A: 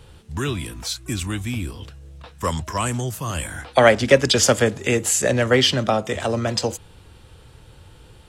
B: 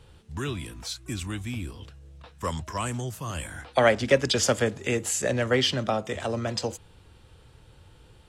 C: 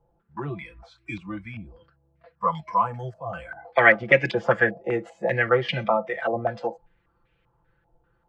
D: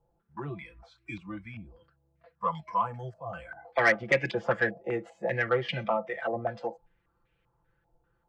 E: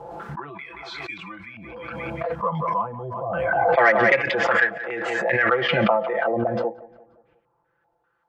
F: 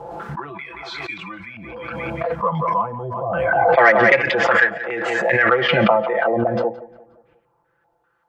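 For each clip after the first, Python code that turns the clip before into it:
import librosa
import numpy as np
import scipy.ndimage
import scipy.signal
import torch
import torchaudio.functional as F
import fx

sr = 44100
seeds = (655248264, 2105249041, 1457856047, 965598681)

y1 = fx.high_shelf(x, sr, hz=12000.0, db=-7.0)
y1 = F.gain(torch.from_numpy(y1), -6.5).numpy()
y2 = y1 + 0.82 * np.pad(y1, (int(5.9 * sr / 1000.0), 0))[:len(y1)]
y2 = fx.noise_reduce_blind(y2, sr, reduce_db=15)
y2 = fx.filter_held_lowpass(y2, sr, hz=5.1, low_hz=750.0, high_hz=2300.0)
y2 = F.gain(torch.from_numpy(y2), -1.5).numpy()
y3 = 10.0 ** (-7.5 / 20.0) * np.tanh(y2 / 10.0 ** (-7.5 / 20.0))
y3 = F.gain(torch.from_numpy(y3), -5.5).numpy()
y4 = fx.filter_lfo_bandpass(y3, sr, shape='sine', hz=0.26, low_hz=360.0, high_hz=1900.0, q=0.75)
y4 = fx.echo_feedback(y4, sr, ms=177, feedback_pct=46, wet_db=-19.0)
y4 = fx.pre_swell(y4, sr, db_per_s=23.0)
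y4 = F.gain(torch.from_numpy(y4), 8.0).numpy()
y5 = y4 + 10.0 ** (-21.5 / 20.0) * np.pad(y4, (int(169 * sr / 1000.0), 0))[:len(y4)]
y5 = F.gain(torch.from_numpy(y5), 4.0).numpy()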